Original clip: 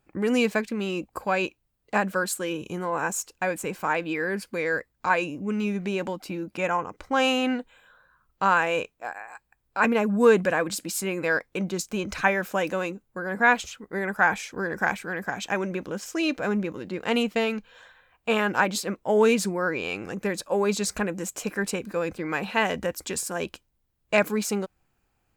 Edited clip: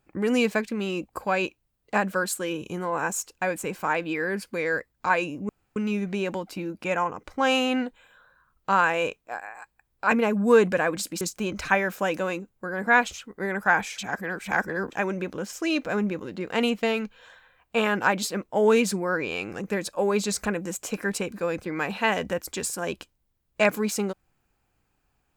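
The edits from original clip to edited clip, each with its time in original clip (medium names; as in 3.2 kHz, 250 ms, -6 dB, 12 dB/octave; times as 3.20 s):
5.49 s: insert room tone 0.27 s
10.94–11.74 s: delete
14.51–15.45 s: reverse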